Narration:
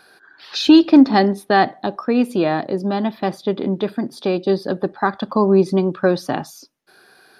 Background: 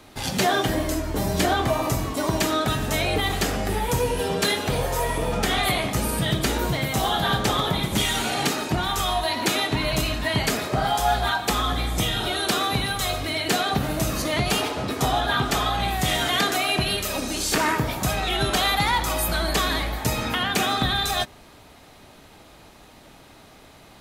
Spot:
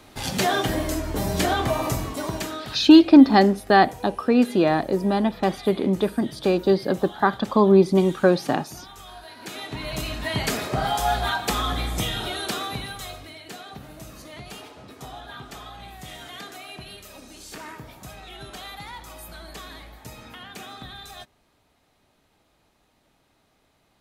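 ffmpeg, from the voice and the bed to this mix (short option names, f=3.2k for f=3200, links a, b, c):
-filter_complex "[0:a]adelay=2200,volume=-1dB[a];[1:a]volume=16.5dB,afade=t=out:st=1.87:d=0.94:silence=0.125893,afade=t=in:st=9.36:d=1.2:silence=0.133352,afade=t=out:st=11.82:d=1.57:silence=0.16788[b];[a][b]amix=inputs=2:normalize=0"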